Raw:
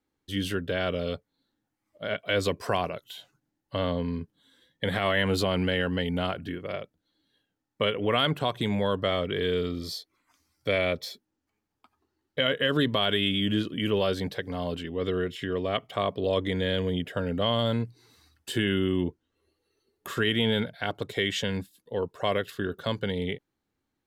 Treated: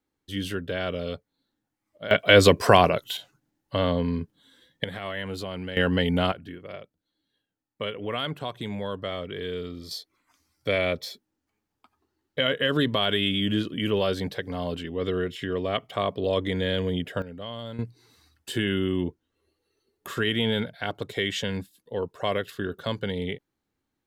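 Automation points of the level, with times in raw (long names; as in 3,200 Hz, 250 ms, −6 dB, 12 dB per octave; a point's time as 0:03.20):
−1 dB
from 0:02.11 +11 dB
from 0:03.17 +4 dB
from 0:04.84 −8 dB
from 0:05.77 +5 dB
from 0:06.32 −5.5 dB
from 0:09.91 +1 dB
from 0:17.22 −11 dB
from 0:17.79 0 dB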